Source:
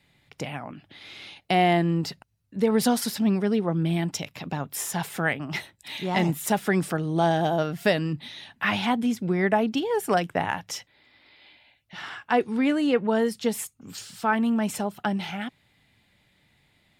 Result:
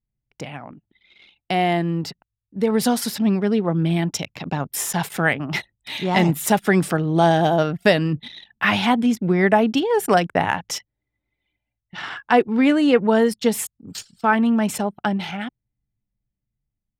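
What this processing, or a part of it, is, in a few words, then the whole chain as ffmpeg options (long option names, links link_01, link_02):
voice memo with heavy noise removal: -af "anlmdn=0.631,dynaudnorm=framelen=930:gausssize=7:maxgain=8dB"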